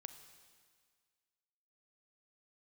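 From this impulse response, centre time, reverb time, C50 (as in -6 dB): 19 ms, 1.8 s, 9.5 dB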